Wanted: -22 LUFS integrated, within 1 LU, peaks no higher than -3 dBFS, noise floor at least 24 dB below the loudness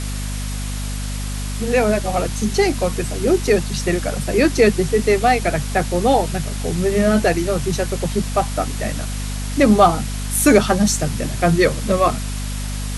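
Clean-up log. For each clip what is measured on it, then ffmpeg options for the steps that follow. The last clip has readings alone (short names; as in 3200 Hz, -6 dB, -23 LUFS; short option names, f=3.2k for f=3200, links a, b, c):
hum 50 Hz; harmonics up to 250 Hz; hum level -23 dBFS; noise floor -25 dBFS; noise floor target -43 dBFS; loudness -19.0 LUFS; peak -1.0 dBFS; loudness target -22.0 LUFS
-> -af "bandreject=f=50:t=h:w=4,bandreject=f=100:t=h:w=4,bandreject=f=150:t=h:w=4,bandreject=f=200:t=h:w=4,bandreject=f=250:t=h:w=4"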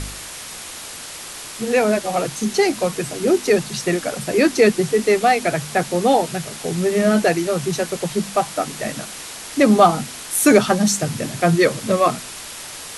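hum none; noise floor -34 dBFS; noise floor target -43 dBFS
-> -af "afftdn=nr=9:nf=-34"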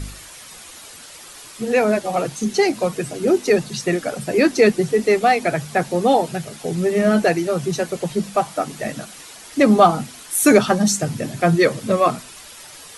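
noise floor -40 dBFS; noise floor target -43 dBFS
-> -af "afftdn=nr=6:nf=-40"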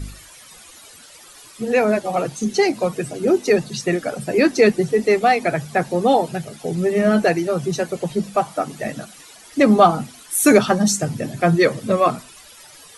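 noise floor -44 dBFS; loudness -19.0 LUFS; peak -1.5 dBFS; loudness target -22.0 LUFS
-> -af "volume=-3dB"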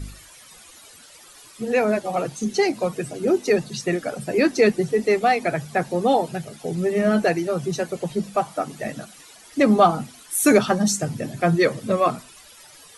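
loudness -22.0 LUFS; peak -4.5 dBFS; noise floor -47 dBFS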